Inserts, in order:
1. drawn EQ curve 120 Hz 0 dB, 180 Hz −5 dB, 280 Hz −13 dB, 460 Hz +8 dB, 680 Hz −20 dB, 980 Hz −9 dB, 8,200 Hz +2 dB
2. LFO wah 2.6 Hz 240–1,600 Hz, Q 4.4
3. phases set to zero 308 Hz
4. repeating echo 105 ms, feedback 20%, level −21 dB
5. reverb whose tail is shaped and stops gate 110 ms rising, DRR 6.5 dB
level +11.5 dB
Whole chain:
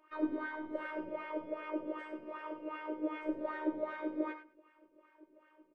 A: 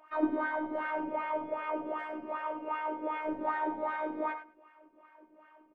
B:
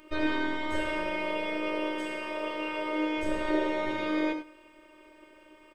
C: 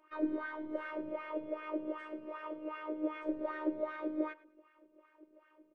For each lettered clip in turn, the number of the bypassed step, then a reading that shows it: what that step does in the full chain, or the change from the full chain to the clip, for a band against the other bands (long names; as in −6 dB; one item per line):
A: 1, 1 kHz band +6.5 dB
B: 2, change in momentary loudness spread −1 LU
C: 5, 500 Hz band +2.0 dB